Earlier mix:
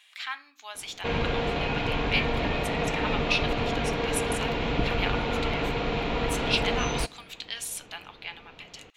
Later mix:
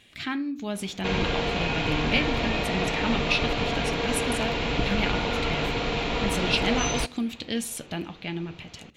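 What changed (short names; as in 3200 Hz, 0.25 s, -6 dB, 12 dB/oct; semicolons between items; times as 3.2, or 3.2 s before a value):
speech: remove Chebyshev high-pass 920 Hz, order 3; background: remove LPF 2400 Hz 6 dB/oct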